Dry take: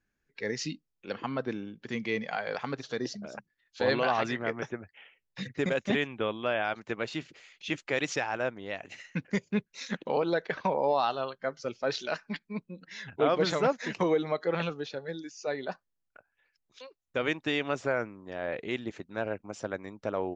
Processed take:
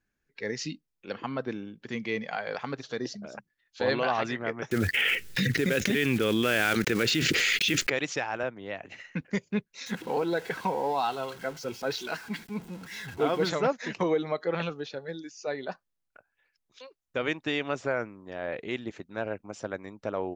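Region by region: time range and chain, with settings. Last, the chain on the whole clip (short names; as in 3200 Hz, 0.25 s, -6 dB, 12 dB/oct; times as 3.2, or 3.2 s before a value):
4.71–7.9 block floating point 5-bit + band shelf 820 Hz -11 dB 1.2 oct + fast leveller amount 100%
8.43–9.21 high shelf 5800 Hz -11.5 dB + three-band squash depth 40%
9.86–13.49 zero-crossing step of -39.5 dBFS + notch comb 600 Hz
whole clip: dry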